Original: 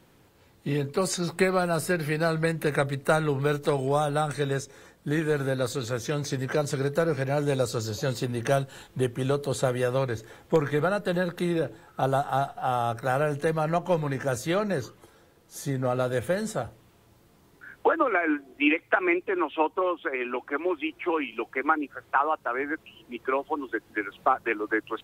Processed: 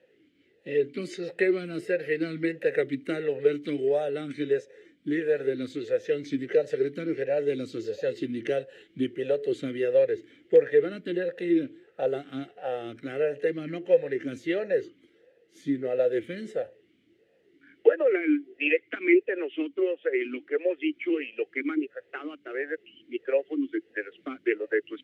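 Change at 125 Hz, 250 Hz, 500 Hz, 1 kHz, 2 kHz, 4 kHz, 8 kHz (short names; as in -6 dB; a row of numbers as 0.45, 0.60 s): -14.5 dB, +0.5 dB, +1.5 dB, -16.5 dB, -4.0 dB, -6.5 dB, under -15 dB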